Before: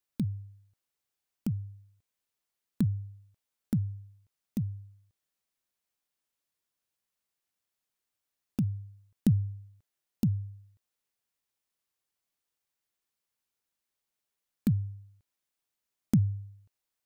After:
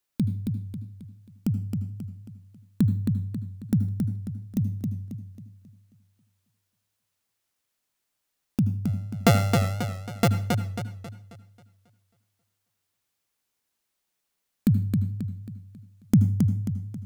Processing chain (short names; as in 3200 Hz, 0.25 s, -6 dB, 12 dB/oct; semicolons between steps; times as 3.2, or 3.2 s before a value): 8.85–10.28 sample sorter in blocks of 64 samples; reverb RT60 0.40 s, pre-delay 74 ms, DRR 14 dB; warbling echo 0.27 s, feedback 41%, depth 66 cents, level -4.5 dB; gain +5.5 dB